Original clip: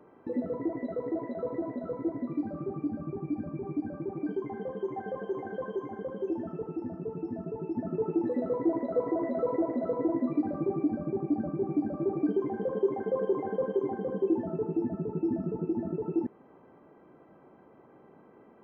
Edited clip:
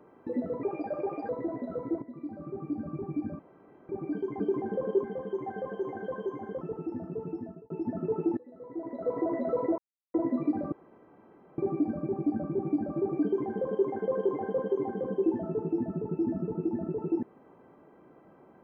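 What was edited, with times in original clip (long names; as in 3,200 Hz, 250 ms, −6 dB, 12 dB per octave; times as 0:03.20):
0:00.63–0:01.43: play speed 121%
0:02.16–0:03.03: fade in, from −12.5 dB
0:03.53–0:04.03: fill with room tone
0:06.11–0:06.51: remove
0:07.21–0:07.60: fade out
0:08.27–0:09.11: fade in quadratic, from −22 dB
0:09.68–0:10.04: silence
0:10.62: splice in room tone 0.86 s
0:12.28–0:12.92: duplicate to 0:04.54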